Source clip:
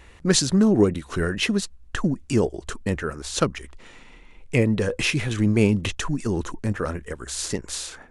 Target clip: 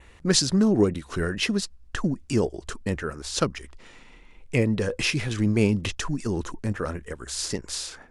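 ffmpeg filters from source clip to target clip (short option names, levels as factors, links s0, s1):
-af "adynamicequalizer=threshold=0.00398:dfrequency=5000:dqfactor=3.9:tfrequency=5000:tqfactor=3.9:attack=5:release=100:ratio=0.375:range=3:mode=boostabove:tftype=bell,volume=0.75"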